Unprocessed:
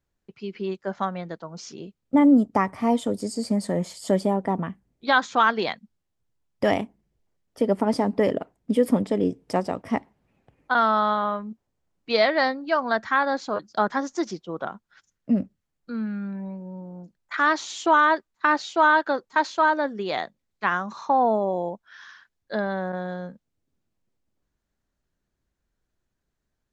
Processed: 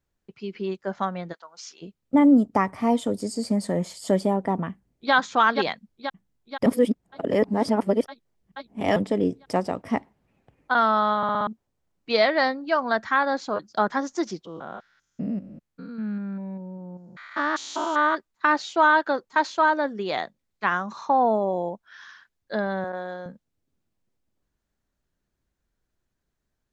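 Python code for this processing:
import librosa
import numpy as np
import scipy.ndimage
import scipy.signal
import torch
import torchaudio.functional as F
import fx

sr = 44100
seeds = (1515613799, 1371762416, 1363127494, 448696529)

y = fx.highpass(x, sr, hz=1100.0, slope=12, at=(1.32, 1.81), fade=0.02)
y = fx.echo_throw(y, sr, start_s=4.7, length_s=0.43, ms=480, feedback_pct=65, wet_db=-5.0)
y = fx.spec_steps(y, sr, hold_ms=200, at=(14.45, 18.14), fade=0.02)
y = fx.highpass(y, sr, hz=320.0, slope=12, at=(22.84, 23.26))
y = fx.edit(y, sr, fx.reverse_span(start_s=6.66, length_s=2.3),
    fx.stutter_over(start_s=11.17, slice_s=0.06, count=5), tone=tone)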